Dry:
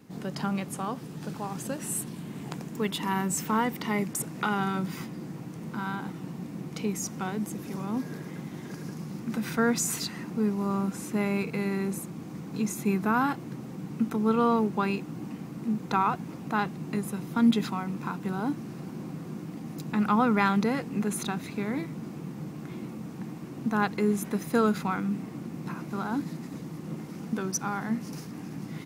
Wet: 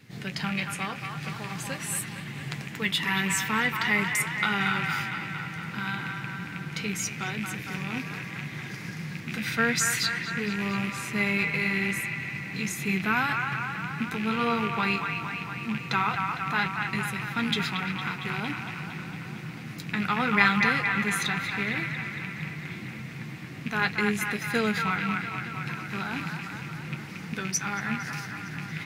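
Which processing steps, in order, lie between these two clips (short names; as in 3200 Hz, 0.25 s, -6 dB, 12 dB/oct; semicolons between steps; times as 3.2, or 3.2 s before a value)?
rattling part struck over -31 dBFS, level -31 dBFS; graphic EQ 125/250/500/1000/2000/4000 Hz +7/-7/-3/-6/+11/+6 dB; on a send: band-limited delay 0.229 s, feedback 69%, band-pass 1500 Hz, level -3.5 dB; on the sum: flange 0.82 Hz, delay 7.6 ms, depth 4.6 ms, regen -44%; gain +4 dB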